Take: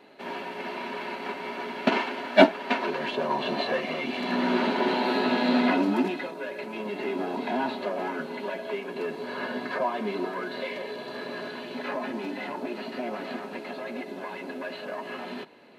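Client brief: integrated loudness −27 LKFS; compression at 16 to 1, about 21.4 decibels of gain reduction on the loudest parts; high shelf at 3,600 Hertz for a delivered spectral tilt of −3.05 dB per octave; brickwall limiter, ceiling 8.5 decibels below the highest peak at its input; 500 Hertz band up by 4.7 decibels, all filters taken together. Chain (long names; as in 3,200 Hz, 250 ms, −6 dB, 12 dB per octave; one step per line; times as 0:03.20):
parametric band 500 Hz +6.5 dB
high-shelf EQ 3,600 Hz −5.5 dB
downward compressor 16 to 1, threshold −28 dBFS
level +7.5 dB
brickwall limiter −17 dBFS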